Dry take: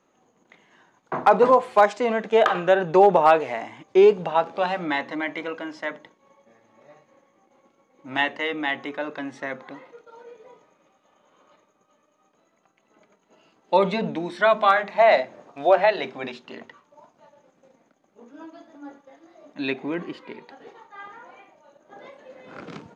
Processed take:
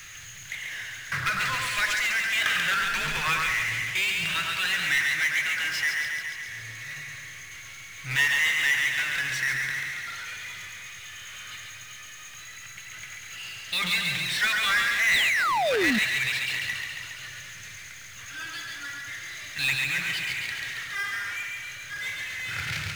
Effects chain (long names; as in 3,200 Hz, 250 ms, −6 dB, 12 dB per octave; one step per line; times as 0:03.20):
elliptic band-stop filter 110–1,800 Hz, stop band 40 dB
in parallel at +2 dB: downward compressor, threshold −42 dBFS, peak gain reduction 19.5 dB
0:02.71–0:03.51: on the sum: frequency shifter −160 Hz
on a send: echo with a time of its own for lows and highs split 1,700 Hz, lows 105 ms, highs 138 ms, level −5 dB
0:15.13–0:15.99: on the sum: sound drawn into the spectrogram fall 200–4,200 Hz −30 dBFS
power curve on the samples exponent 0.5
level −4 dB